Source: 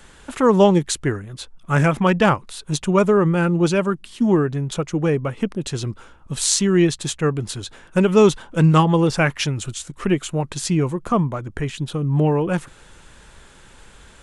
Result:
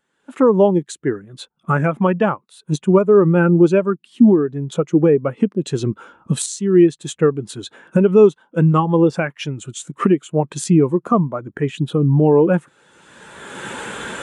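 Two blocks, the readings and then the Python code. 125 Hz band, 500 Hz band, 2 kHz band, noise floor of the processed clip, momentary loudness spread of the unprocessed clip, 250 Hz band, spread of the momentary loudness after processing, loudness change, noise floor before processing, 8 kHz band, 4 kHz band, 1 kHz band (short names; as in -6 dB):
+1.0 dB, +4.5 dB, -2.0 dB, -67 dBFS, 12 LU, +3.5 dB, 16 LU, +3.0 dB, -48 dBFS, -5.0 dB, -6.0 dB, 0.0 dB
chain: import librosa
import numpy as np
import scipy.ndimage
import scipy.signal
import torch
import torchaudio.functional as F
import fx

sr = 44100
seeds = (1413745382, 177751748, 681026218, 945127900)

y = fx.recorder_agc(x, sr, target_db=-4.0, rise_db_per_s=20.0, max_gain_db=30)
y = scipy.signal.sosfilt(scipy.signal.butter(2, 190.0, 'highpass', fs=sr, output='sos'), y)
y = fx.dynamic_eq(y, sr, hz=4900.0, q=1.8, threshold_db=-36.0, ratio=4.0, max_db=-4)
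y = fx.spectral_expand(y, sr, expansion=1.5)
y = F.gain(torch.from_numpy(y), -3.0).numpy()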